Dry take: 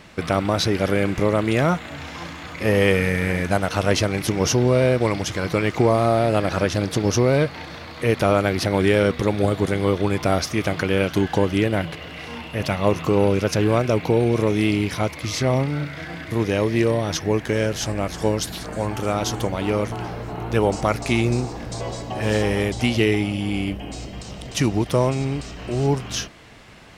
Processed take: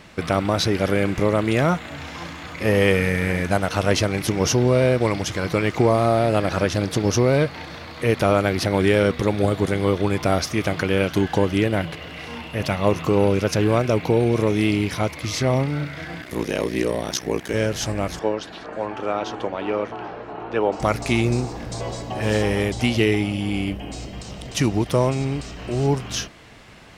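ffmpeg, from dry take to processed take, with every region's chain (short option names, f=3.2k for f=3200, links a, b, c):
-filter_complex "[0:a]asettb=1/sr,asplit=3[a][b][c];[a]atrim=end=16.214[d];[b]atrim=start=16.21:end=17.54,asetpts=PTS-STARTPTS,afade=t=in:d=0.004:c=qsin,afade=t=out:st=1.326:d=0.004:c=qsin,highpass=150,highshelf=f=5.5k:g=8,aeval=exprs='val(0)*sin(2*PI*31*n/s)':c=same[e];[c]atrim=start=17.536[f];[d][e]acrossfade=d=0.004:c1=hsin:c2=qsin[g];[g][f]acrossfade=d=0.004:c1=qsin:c2=hsin,asettb=1/sr,asplit=3[h][i][j];[h]atrim=end=18.194[k];[i]atrim=start=18.19:end=20.8,asetpts=PTS-STARTPTS,afade=t=in:d=0.004:c=qsin,afade=t=out:st=2.606:d=0.004:c=qsin,lowpass=5.7k,acrossover=split=260 3100:gain=0.158 1 0.251[l][m][n];[l][m][n]amix=inputs=3:normalize=0,bandreject=f=2.1k:w=14[o];[j]atrim=start=20.796[p];[k][o]acrossfade=d=0.004:c1=hsin:c2=qsin[q];[q][p]acrossfade=d=0.004:c1=qsin:c2=hsin"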